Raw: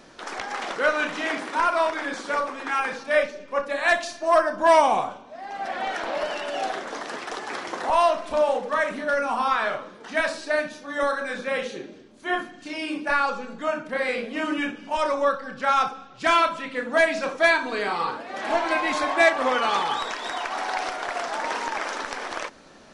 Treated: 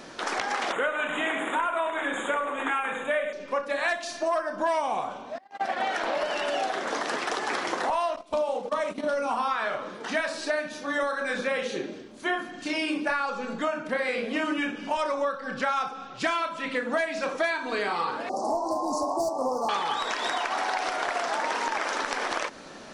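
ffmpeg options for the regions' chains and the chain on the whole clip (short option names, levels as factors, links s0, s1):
-filter_complex "[0:a]asettb=1/sr,asplit=3[s0][s1][s2];[s0]atrim=end=0.724[s3];[s1]atrim=start=0.72:end=3.33,asetpts=PTS-STARTPTS,afade=t=in:d=0.004:c=qsin,afade=t=out:st=2.606:d=0.004:c=qsin,asuperstop=centerf=5000:order=20:qfactor=1.8,bandreject=f=50:t=h:w=6,bandreject=f=100:t=h:w=6,bandreject=f=150:t=h:w=6,bandreject=f=200:t=h:w=6,bandreject=f=250:t=h:w=6,bandreject=f=300:t=h:w=6,bandreject=f=350:t=h:w=6,bandreject=f=400:t=h:w=6,bandreject=f=450:t=h:w=6,bandreject=f=500:t=h:w=6,aecho=1:1:101:0.299,atrim=end_sample=115101[s4];[s2]atrim=start=3.326[s5];[s3][s4]acrossfade=d=0.004:c1=hsin:c2=qsin[s6];[s6][s5]acrossfade=d=0.004:c1=qsin:c2=hsin,asettb=1/sr,asplit=3[s7][s8][s9];[s7]atrim=end=5.384[s10];[s8]atrim=start=5.38:end=6.04,asetpts=PTS-STARTPTS,afade=t=in:d=0.004:c=qsin,afade=t=out:st=0.656:d=0.004:c=qsin,agate=range=0.00891:threshold=0.0251:ratio=16:release=100:detection=peak,highpass=70,acompressor=mode=upward:threshold=0.00316:ratio=2.5:attack=3.2:release=140:knee=2.83:detection=peak[s11];[s9]atrim=start=6.036[s12];[s10][s11]acrossfade=d=0.004:c1=hsin:c2=qsin[s13];[s13][s12]acrossfade=d=0.004:c1=qsin:c2=hsin,asettb=1/sr,asplit=3[s14][s15][s16];[s14]atrim=end=8.164[s17];[s15]atrim=start=8.16:end=9.31,asetpts=PTS-STARTPTS,afade=t=in:d=0.004:c=qsin,afade=t=out:st=1.146:d=0.004:c=qsin,equalizer=f=1700:t=o:w=0.53:g=-13,agate=range=0.141:threshold=0.0224:ratio=16:release=100:detection=peak[s18];[s16]atrim=start=9.306[s19];[s17][s18]acrossfade=d=0.004:c1=hsin:c2=qsin[s20];[s20][s19]acrossfade=d=0.004:c1=qsin:c2=hsin,asettb=1/sr,asplit=3[s21][s22][s23];[s21]atrim=end=18.294[s24];[s22]atrim=start=18.29:end=19.69,asetpts=PTS-STARTPTS,afade=t=in:d=0.004:c=qsin,afade=t=out:st=1.396:d=0.004:c=qsin,asoftclip=type=hard:threshold=0.133,asuperstop=centerf=2300:order=12:qfactor=0.59[s25];[s23]atrim=start=19.686[s26];[s24][s25]acrossfade=d=0.004:c1=hsin:c2=qsin[s27];[s27][s26]acrossfade=d=0.004:c1=qsin:c2=hsin,lowshelf=f=80:g=-9,acompressor=threshold=0.0282:ratio=6,volume=2"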